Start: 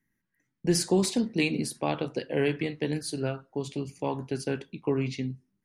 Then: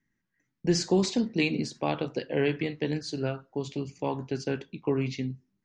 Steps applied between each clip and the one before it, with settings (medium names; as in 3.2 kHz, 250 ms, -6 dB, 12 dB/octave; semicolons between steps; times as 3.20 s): steep low-pass 7.2 kHz 48 dB/octave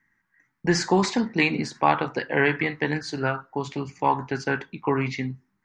high-order bell 1.3 kHz +12.5 dB; trim +2.5 dB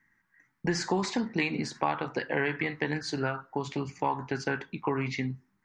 compression 2.5:1, threshold -28 dBFS, peak gain reduction 10 dB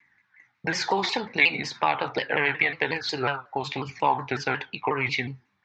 phaser 0.48 Hz, delay 2.6 ms, feedback 25%; cabinet simulation 100–5800 Hz, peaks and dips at 160 Hz -9 dB, 230 Hz -8 dB, 330 Hz -8 dB, 810 Hz +4 dB, 2.4 kHz +8 dB, 3.7 kHz +8 dB; vibrato with a chosen wave saw down 5.5 Hz, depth 160 cents; trim +4.5 dB